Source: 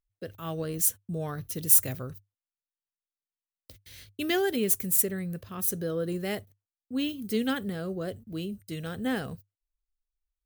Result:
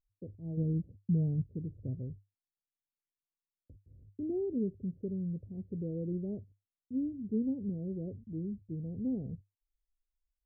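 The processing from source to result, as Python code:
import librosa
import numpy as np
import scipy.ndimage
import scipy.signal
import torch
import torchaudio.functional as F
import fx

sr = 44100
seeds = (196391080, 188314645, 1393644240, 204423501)

y = scipy.ndimage.gaussian_filter1d(x, 23.0, mode='constant')
y = fx.peak_eq(y, sr, hz=170.0, db=7.5, octaves=1.7, at=(0.57, 1.42))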